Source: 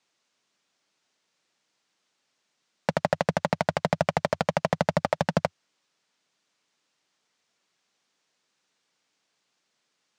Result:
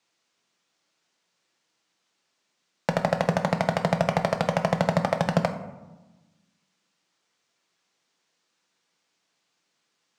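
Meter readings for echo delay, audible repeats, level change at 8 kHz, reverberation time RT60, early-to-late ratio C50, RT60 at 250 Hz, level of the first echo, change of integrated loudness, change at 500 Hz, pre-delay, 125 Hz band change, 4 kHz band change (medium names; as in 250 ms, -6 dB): no echo, no echo, +1.0 dB, 1.1 s, 10.0 dB, 1.8 s, no echo, +2.0 dB, +1.0 dB, 6 ms, +3.5 dB, +1.0 dB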